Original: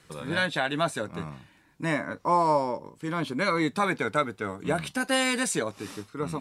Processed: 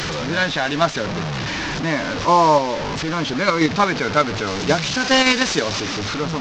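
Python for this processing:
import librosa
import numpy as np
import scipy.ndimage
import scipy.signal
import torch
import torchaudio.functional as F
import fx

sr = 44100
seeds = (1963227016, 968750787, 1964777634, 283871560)

p1 = fx.delta_mod(x, sr, bps=32000, step_db=-27.5)
p2 = fx.high_shelf(p1, sr, hz=3500.0, db=8.5, at=(4.47, 5.8))
p3 = fx.level_steps(p2, sr, step_db=12)
p4 = p2 + F.gain(torch.from_numpy(p3), 2.0).numpy()
y = F.gain(torch.from_numpy(p4), 3.0).numpy()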